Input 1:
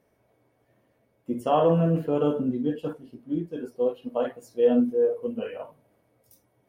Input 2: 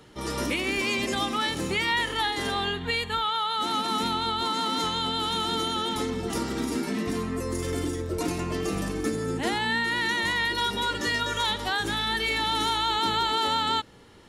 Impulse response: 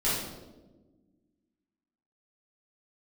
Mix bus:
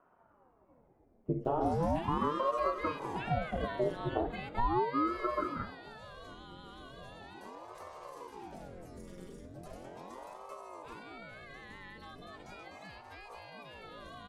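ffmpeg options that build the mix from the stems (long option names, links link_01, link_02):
-filter_complex "[0:a]lowpass=1100,volume=0.5dB[link_01];[1:a]adelay=1450,volume=-8dB,afade=type=out:start_time=5.07:duration=0.48:silence=0.266073[link_02];[link_01][link_02]amix=inputs=2:normalize=0,lowshelf=frequency=220:gain=9.5,acrossover=split=190|2100[link_03][link_04][link_05];[link_03]acompressor=threshold=-46dB:ratio=4[link_06];[link_04]acompressor=threshold=-27dB:ratio=4[link_07];[link_05]acompressor=threshold=-58dB:ratio=4[link_08];[link_06][link_07][link_08]amix=inputs=3:normalize=0,aeval=exprs='val(0)*sin(2*PI*470*n/s+470*0.8/0.38*sin(2*PI*0.38*n/s))':channel_layout=same"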